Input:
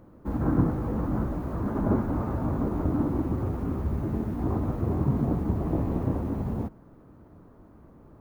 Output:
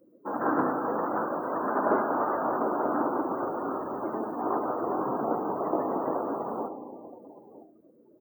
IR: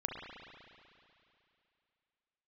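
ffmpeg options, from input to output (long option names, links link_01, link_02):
-filter_complex "[0:a]aecho=1:1:969:0.158,asplit=2[link_01][link_02];[1:a]atrim=start_sample=2205[link_03];[link_02][link_03]afir=irnorm=-1:irlink=0,volume=-4dB[link_04];[link_01][link_04]amix=inputs=2:normalize=0,afftdn=noise_reduction=34:noise_floor=-42,aemphasis=mode=production:type=riaa,acontrast=56,highpass=440"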